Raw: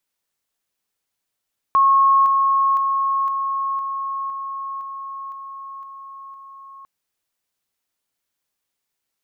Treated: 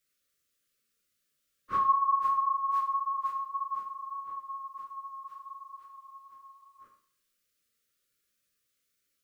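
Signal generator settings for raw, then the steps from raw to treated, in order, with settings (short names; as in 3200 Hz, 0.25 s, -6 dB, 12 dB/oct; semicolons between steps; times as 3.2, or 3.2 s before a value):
level ladder 1090 Hz -11 dBFS, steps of -3 dB, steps 10, 0.51 s 0.00 s
phase scrambler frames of 0.1 s; elliptic band-stop 570–1200 Hz, stop band 40 dB; Schroeder reverb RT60 0.54 s, combs from 27 ms, DRR 4.5 dB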